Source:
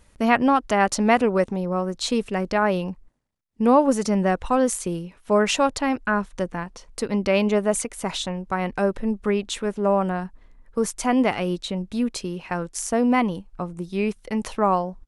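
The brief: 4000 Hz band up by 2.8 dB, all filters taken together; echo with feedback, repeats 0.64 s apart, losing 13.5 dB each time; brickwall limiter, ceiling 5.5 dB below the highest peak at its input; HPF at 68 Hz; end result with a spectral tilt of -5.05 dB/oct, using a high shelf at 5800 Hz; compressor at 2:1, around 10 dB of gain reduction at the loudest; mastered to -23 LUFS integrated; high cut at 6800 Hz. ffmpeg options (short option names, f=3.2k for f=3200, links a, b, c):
-af "highpass=68,lowpass=6.8k,equalizer=f=4k:t=o:g=7,highshelf=f=5.8k:g=-8.5,acompressor=threshold=-31dB:ratio=2,alimiter=limit=-20dB:level=0:latency=1,aecho=1:1:640|1280:0.211|0.0444,volume=8.5dB"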